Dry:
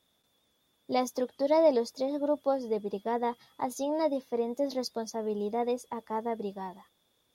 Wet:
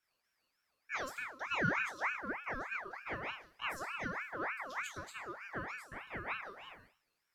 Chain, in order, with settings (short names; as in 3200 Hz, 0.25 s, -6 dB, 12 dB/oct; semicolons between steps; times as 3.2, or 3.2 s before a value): resonator bank F2 sus4, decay 0.49 s; ring modulator with a swept carrier 1400 Hz, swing 45%, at 3.3 Hz; gain +7.5 dB